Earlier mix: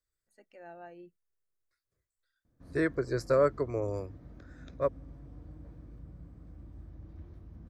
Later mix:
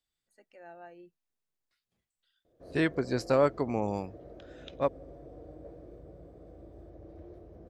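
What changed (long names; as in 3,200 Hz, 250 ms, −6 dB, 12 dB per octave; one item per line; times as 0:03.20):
second voice: remove phaser with its sweep stopped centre 810 Hz, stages 6
background: add flat-topped bell 500 Hz +16 dB 1.3 octaves
master: add low-shelf EQ 260 Hz −5.5 dB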